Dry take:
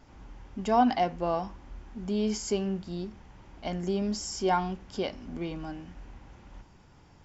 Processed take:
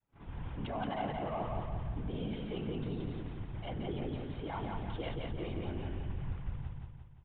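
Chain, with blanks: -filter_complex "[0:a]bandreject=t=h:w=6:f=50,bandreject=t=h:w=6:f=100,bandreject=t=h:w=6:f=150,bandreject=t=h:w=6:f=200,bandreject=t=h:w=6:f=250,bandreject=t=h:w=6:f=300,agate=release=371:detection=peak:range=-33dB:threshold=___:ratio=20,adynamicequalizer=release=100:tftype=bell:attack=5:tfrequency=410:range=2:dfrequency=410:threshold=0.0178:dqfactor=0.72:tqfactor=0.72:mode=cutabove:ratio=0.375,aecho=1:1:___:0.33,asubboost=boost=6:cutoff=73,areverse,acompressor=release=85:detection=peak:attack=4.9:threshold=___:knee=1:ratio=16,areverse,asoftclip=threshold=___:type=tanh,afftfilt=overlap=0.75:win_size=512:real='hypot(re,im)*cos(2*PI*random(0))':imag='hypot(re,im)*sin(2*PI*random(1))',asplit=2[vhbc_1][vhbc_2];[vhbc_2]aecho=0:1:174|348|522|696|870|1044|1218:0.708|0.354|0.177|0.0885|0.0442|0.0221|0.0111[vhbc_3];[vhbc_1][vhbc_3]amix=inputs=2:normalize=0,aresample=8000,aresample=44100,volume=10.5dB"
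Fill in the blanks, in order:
-49dB, 6, -39dB, -36dB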